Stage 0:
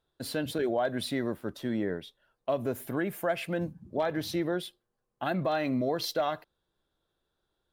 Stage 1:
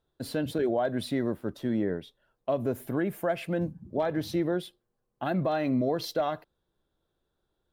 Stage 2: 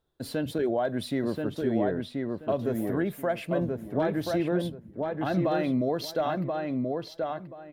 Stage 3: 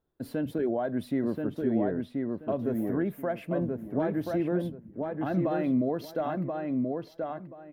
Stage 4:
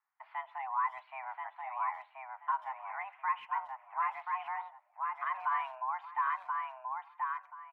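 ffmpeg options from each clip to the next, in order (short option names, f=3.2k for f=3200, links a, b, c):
-af "tiltshelf=f=840:g=3.5"
-filter_complex "[0:a]asplit=2[a][b];[b]adelay=1031,lowpass=f=2.7k:p=1,volume=-3dB,asplit=2[c][d];[d]adelay=1031,lowpass=f=2.7k:p=1,volume=0.22,asplit=2[e][f];[f]adelay=1031,lowpass=f=2.7k:p=1,volume=0.22[g];[a][c][e][g]amix=inputs=4:normalize=0"
-af "equalizer=f=250:t=o:w=1:g=5,equalizer=f=4k:t=o:w=1:g=-8,equalizer=f=8k:t=o:w=1:g=-7,volume=-3.5dB"
-filter_complex "[0:a]highpass=f=580:t=q:w=0.5412,highpass=f=580:t=q:w=1.307,lowpass=f=2.3k:t=q:w=0.5176,lowpass=f=2.3k:t=q:w=0.7071,lowpass=f=2.3k:t=q:w=1.932,afreqshift=390,asplit=2[a][b];[b]adelay=130,highpass=300,lowpass=3.4k,asoftclip=type=hard:threshold=-31dB,volume=-24dB[c];[a][c]amix=inputs=2:normalize=0,volume=1dB"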